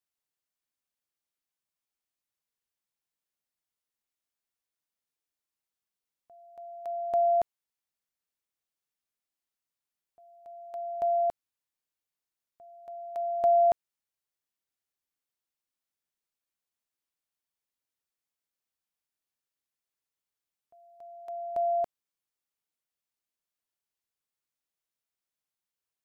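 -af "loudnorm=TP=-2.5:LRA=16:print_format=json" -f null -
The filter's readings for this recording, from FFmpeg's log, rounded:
"input_i" : "-28.6",
"input_tp" : "-17.9",
"input_lra" : "15.0",
"input_thresh" : "-41.0",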